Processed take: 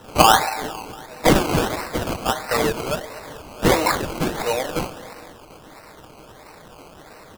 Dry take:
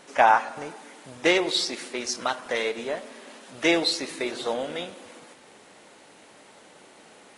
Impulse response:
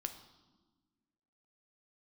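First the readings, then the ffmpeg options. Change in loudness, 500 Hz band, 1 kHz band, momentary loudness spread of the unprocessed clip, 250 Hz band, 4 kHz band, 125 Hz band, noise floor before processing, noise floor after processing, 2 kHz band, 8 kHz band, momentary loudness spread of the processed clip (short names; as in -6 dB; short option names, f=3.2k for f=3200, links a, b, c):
+4.5 dB, +5.0 dB, +5.0 dB, 23 LU, +6.5 dB, +2.5 dB, +20.0 dB, -52 dBFS, -45 dBFS, +2.0 dB, +7.0 dB, 20 LU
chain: -filter_complex "[0:a]aecho=1:1:6.5:0.52,aexciter=amount=2.5:drive=5.8:freq=2k,asplit=2[a][b];[b]aeval=exprs='(mod(7.08*val(0)+1,2)-1)/7.08':c=same,volume=-9dB[c];[a][c]amix=inputs=2:normalize=0,highpass=420,lowpass=3.5k,asplit=2[d][e];[e]adelay=230,lowpass=f=2k:p=1,volume=-17dB,asplit=2[f][g];[g]adelay=230,lowpass=f=2k:p=1,volume=0.54,asplit=2[h][i];[i]adelay=230,lowpass=f=2k:p=1,volume=0.54,asplit=2[j][k];[k]adelay=230,lowpass=f=2k:p=1,volume=0.54,asplit=2[l][m];[m]adelay=230,lowpass=f=2k:p=1,volume=0.54[n];[d][f][h][j][l][n]amix=inputs=6:normalize=0,asplit=2[o][p];[1:a]atrim=start_sample=2205[q];[p][q]afir=irnorm=-1:irlink=0,volume=-1dB[r];[o][r]amix=inputs=2:normalize=0,acrusher=samples=19:mix=1:aa=0.000001:lfo=1:lforange=11.4:lforate=1.5,volume=-2dB"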